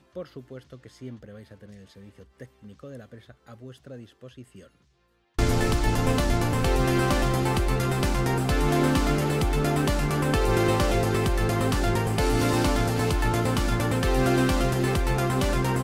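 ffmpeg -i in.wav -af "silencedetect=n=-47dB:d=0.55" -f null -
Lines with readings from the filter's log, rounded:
silence_start: 4.67
silence_end: 5.39 | silence_duration: 0.71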